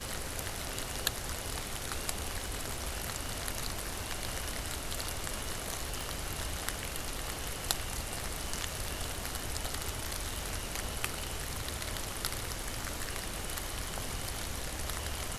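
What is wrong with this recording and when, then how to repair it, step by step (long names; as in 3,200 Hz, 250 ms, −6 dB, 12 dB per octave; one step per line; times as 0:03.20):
surface crackle 29 per second −43 dBFS
0:06.01: click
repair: click removal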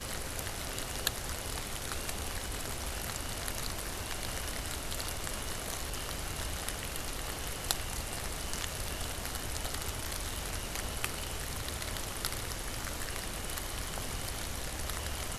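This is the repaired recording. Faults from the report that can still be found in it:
0:06.01: click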